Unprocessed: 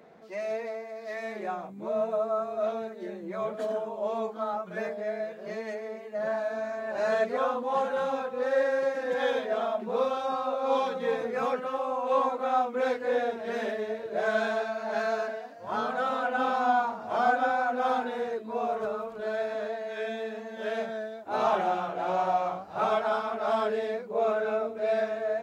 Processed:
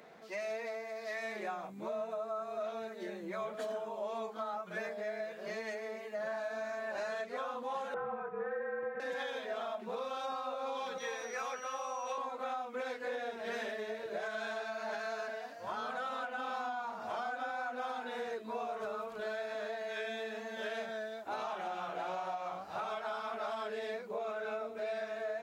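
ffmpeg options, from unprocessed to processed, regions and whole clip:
-filter_complex "[0:a]asettb=1/sr,asplit=3[a][b][c];[a]atrim=end=7.944[d];[b]atrim=start=7.94:end=9,asetpts=PTS-STARTPTS,afade=t=in:d=0.004:c=qsin,afade=t=out:st=1.056:d=0.004:c=qsin,lowpass=f=1.8k:w=0.5412,lowpass=f=1.8k:w=1.3066,afreqshift=-41[e];[c]atrim=start=8.996[f];[d][e]acrossfade=d=0.004:c1=hsin:c2=qsin[g];[g][f]acrossfade=d=0.004:c1=qsin:c2=hsin,asettb=1/sr,asplit=3[h][i][j];[h]atrim=end=10.984[k];[i]atrim=start=10.98:end=12.18,asetpts=PTS-STARTPTS,afade=t=in:d=0.004:c=qsin,afade=t=out:st=1.196:d=0.004:c=qsin,highpass=f=770:p=1,aeval=exprs='val(0)+0.00224*sin(2*PI*5800*n/s)':c=same[l];[j]atrim=start=12.176[m];[k][l]acrossfade=d=0.004:c1=hsin:c2=qsin[n];[n][m]acrossfade=d=0.004:c1=qsin:c2=hsin,tiltshelf=f=970:g=-5,alimiter=limit=-23.5dB:level=0:latency=1:release=336,acompressor=threshold=-38dB:ratio=2.5"

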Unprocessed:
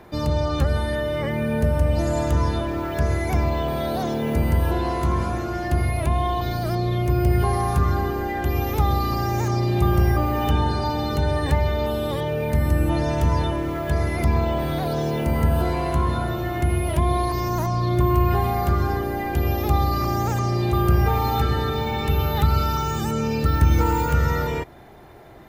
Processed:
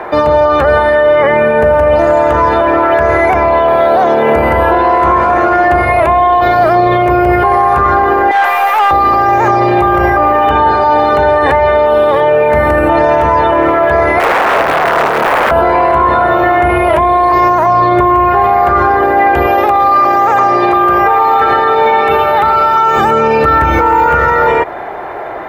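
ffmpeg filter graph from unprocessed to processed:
-filter_complex "[0:a]asettb=1/sr,asplit=3[a][b][c];[a]atrim=end=8.314[d];[b]atrim=start=8.31:end=8.91,asetpts=PTS-STARTPTS,afade=t=in:d=0.004:c=qsin,afade=t=out:st=0.596:d=0.004:c=qsin,highpass=f=730:w=0.5412,highpass=f=730:w=1.3066,aeval=exprs='(tanh(112*val(0)+0.45)-tanh(0.45))/112':c=same,acontrast=86[e];[c]atrim=start=8.906[f];[d][e]acrossfade=d=0.004:c1=hsin:c2=qsin[g];[g][f]acrossfade=d=0.004:c1=qsin:c2=hsin,asettb=1/sr,asplit=3[h][i][j];[h]atrim=end=14.184[k];[i]atrim=start=14.18:end=15.51,asetpts=PTS-STARTPTS,afade=t=in:d=0.004:c=qsin,afade=t=out:st=1.326:d=0.004:c=qsin,highpass=f=55:w=0.5412,highpass=f=55:w=1.3066,bandreject=f=2.8k:w=5.8,aeval=exprs='(mod(8.41*val(0)+1,2)-1)/8.41':c=same[l];[j]atrim=start=15.506[m];[k][l]acrossfade=d=0.004:c1=hsin:c2=qsin[n];[n][m]acrossfade=d=0.004:c1=qsin:c2=hsin,asettb=1/sr,asplit=3[o][p][q];[o]atrim=end=19.464[r];[p]atrim=start=19.46:end=22.97,asetpts=PTS-STARTPTS,afade=t=in:d=0.004:c=qsin,afade=t=out:st=3.506:d=0.004:c=qsin,highpass=f=250:p=1,aecho=1:1:112|224|336|448:0.266|0.109|0.0447|0.0183,atrim=end_sample=154791[s];[q]atrim=start=22.966[t];[r][s]acrossfade=d=0.004:c1=hsin:c2=qsin[u];[u][t]acrossfade=d=0.004:c1=qsin:c2=hsin,acrossover=split=440 2200:gain=0.0794 1 0.0631[v][w][x];[v][w][x]amix=inputs=3:normalize=0,acontrast=79,alimiter=level_in=22dB:limit=-1dB:release=50:level=0:latency=1,volume=-1dB"

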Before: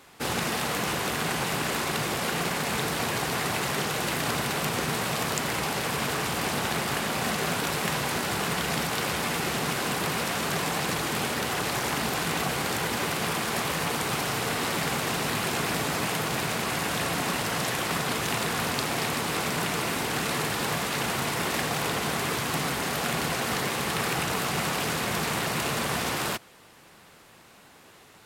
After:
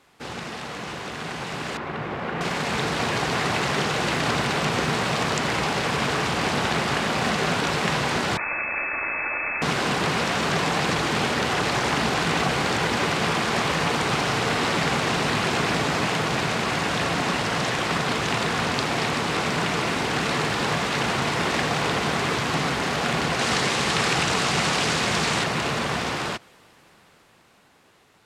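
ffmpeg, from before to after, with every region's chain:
-filter_complex "[0:a]asettb=1/sr,asplit=3[a][b][c];[a]atrim=end=1.774[d];[b]atrim=start=1.77:end=2.41,asetpts=PTS-STARTPTS,afade=t=in:d=0.004:c=qsin,afade=t=out:st=0.636:d=0.004:c=qsin,lowpass=2k,aeval=exprs='sgn(val(0))*max(abs(val(0))-0.00178,0)':c=same[e];[c]atrim=start=2.406[f];[d][e]acrossfade=d=0.004:c1=hsin:c2=qsin[g];[g][f]acrossfade=d=0.004:c1=qsin:c2=hsin,asettb=1/sr,asplit=3[h][i][j];[h]atrim=end=8.374[k];[i]atrim=start=8.37:end=9.62,asetpts=PTS-STARTPTS,afade=t=in:d=0.004:c=qsin,afade=t=out:st=1.246:d=0.004:c=qsin,aecho=1:1:3.5:0.39,atrim=end_sample=55125,aeval=exprs='max(val(0),0)':c=same,lowpass=f=2.2k:t=q:w=0.5098,lowpass=f=2.2k:t=q:w=0.6013,lowpass=f=2.2k:t=q:w=0.9,lowpass=f=2.2k:t=q:w=2.563,afreqshift=-2600[l];[j]atrim=start=9.616[m];[k][l]acrossfade=d=0.004:c1=hsin:c2=qsin[n];[n][m]acrossfade=d=0.004:c1=qsin:c2=hsin,asettb=1/sr,asplit=3[o][p][q];[o]atrim=end=23.394[r];[p]atrim=start=23.39:end=25.44,asetpts=PTS-STARTPTS,afade=t=in:d=0.004:c=qsin,afade=t=out:st=2.046:d=0.004:c=qsin,lowpass=11k,highshelf=f=3.8k:g=9[s];[q]atrim=start=25.436[t];[r][s]acrossfade=d=0.004:c1=hsin:c2=qsin[u];[u][t]acrossfade=d=0.004:c1=qsin:c2=hsin,acrossover=split=8100[v][w];[w]acompressor=threshold=-54dB:ratio=4:attack=1:release=60[x];[v][x]amix=inputs=2:normalize=0,highshelf=f=11k:g=-11.5,dynaudnorm=f=360:g=13:m=11.5dB,volume=-5dB"

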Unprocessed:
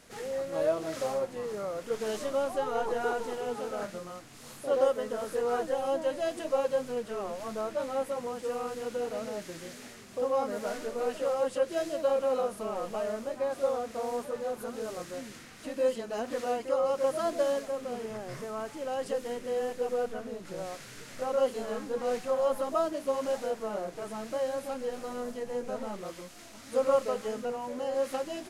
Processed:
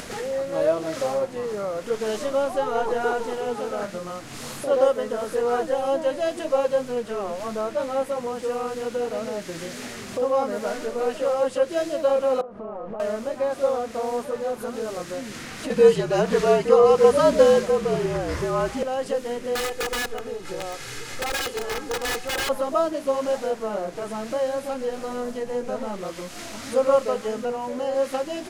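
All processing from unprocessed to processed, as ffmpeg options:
-filter_complex "[0:a]asettb=1/sr,asplit=3[a][b][c];[a]atrim=end=12.414[d];[b]atrim=start=12.41:end=13,asetpts=PTS-STARTPTS,afade=t=in:d=0.004:c=qsin,afade=t=out:st=0.586:d=0.004:c=qsin,lowpass=1.2k,acompressor=threshold=-41dB:ratio=6:attack=3.2:release=140:knee=1:detection=peak[e];[c]atrim=start=12.996[f];[d][e]acrossfade=d=0.004:c1=hsin:c2=qsin[g];[g][f]acrossfade=d=0.004:c1=qsin:c2=hsin,asettb=1/sr,asplit=3[h][i][j];[h]atrim=end=15.704[k];[i]atrim=start=15.7:end=18.83,asetpts=PTS-STARTPTS,afade=t=in:d=0.004:c=qsin,afade=t=out:st=3.126:d=0.004:c=qsin,afreqshift=-56,acontrast=65,highshelf=f=9.6k:g=-4.5[l];[j]atrim=start=18.826[m];[k][l]acrossfade=d=0.004:c1=hsin:c2=qsin[n];[n][m]acrossfade=d=0.004:c1=qsin:c2=hsin,asettb=1/sr,asplit=3[o][p][q];[o]atrim=end=19.554[r];[p]atrim=start=19.55:end=22.49,asetpts=PTS-STARTPTS,afade=t=in:d=0.004:c=qsin,afade=t=out:st=2.936:d=0.004:c=qsin,equalizer=f=340:w=0.53:g=-3,aeval=exprs='(mod(28.2*val(0)+1,2)-1)/28.2':c=same,aecho=1:1:2.4:0.57,atrim=end_sample=129654[s];[q]atrim=start=22.486[t];[r][s]acrossfade=d=0.004:c1=hsin:c2=qsin[u];[u][t]acrossfade=d=0.004:c1=qsin:c2=hsin,highshelf=f=10k:g=-5.5,acompressor=mode=upward:threshold=-33dB:ratio=2.5,volume=6.5dB"

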